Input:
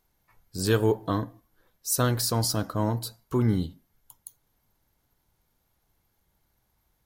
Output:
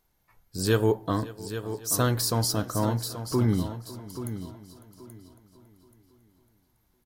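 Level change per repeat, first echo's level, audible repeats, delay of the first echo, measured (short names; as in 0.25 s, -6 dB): no steady repeat, -19.0 dB, 7, 0.553 s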